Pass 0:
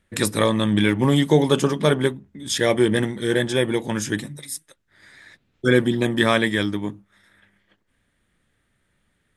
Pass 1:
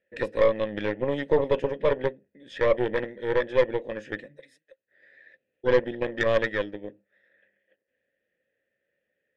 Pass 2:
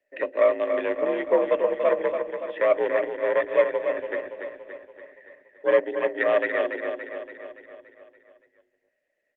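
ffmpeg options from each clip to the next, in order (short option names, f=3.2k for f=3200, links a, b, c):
-filter_complex "[0:a]asplit=3[a][b][c];[a]bandpass=f=530:t=q:w=8,volume=0dB[d];[b]bandpass=f=1.84k:t=q:w=8,volume=-6dB[e];[c]bandpass=f=2.48k:t=q:w=8,volume=-9dB[f];[d][e][f]amix=inputs=3:normalize=0,aemphasis=mode=reproduction:type=75kf,aeval=exprs='0.2*(cos(1*acos(clip(val(0)/0.2,-1,1)))-cos(1*PI/2))+0.0224*(cos(6*acos(clip(val(0)/0.2,-1,1)))-cos(6*PI/2))':c=same,volume=5dB"
-filter_complex "[0:a]asplit=2[a][b];[b]aecho=0:1:285|570|855|1140|1425|1710|1995:0.447|0.25|0.14|0.0784|0.0439|0.0246|0.0138[c];[a][c]amix=inputs=2:normalize=0,highpass=f=200:t=q:w=0.5412,highpass=f=200:t=q:w=1.307,lowpass=f=2.9k:t=q:w=0.5176,lowpass=f=2.9k:t=q:w=0.7071,lowpass=f=2.9k:t=q:w=1.932,afreqshift=57,volume=1.5dB" -ar 48000 -c:a libopus -b:a 32k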